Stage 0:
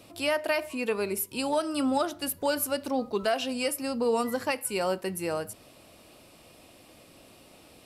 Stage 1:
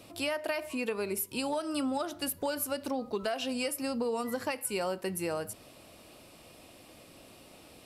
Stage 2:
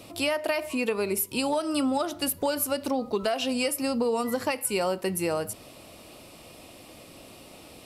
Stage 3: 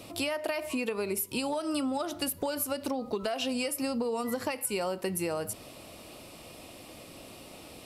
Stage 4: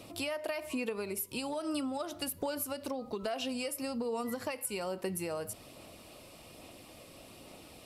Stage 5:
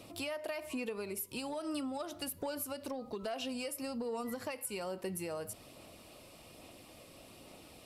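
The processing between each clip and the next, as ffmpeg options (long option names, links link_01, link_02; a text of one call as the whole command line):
ffmpeg -i in.wav -af "acompressor=threshold=-29dB:ratio=6" out.wav
ffmpeg -i in.wav -af "equalizer=frequency=1600:width=6:gain=-4.5,volume=6dB" out.wav
ffmpeg -i in.wav -af "acompressor=threshold=-28dB:ratio=6" out.wav
ffmpeg -i in.wav -af "aphaser=in_gain=1:out_gain=1:delay=1.9:decay=0.2:speed=1.2:type=sinusoidal,volume=-5dB" out.wav
ffmpeg -i in.wav -af "asoftclip=type=tanh:threshold=-25dB,volume=-2.5dB" out.wav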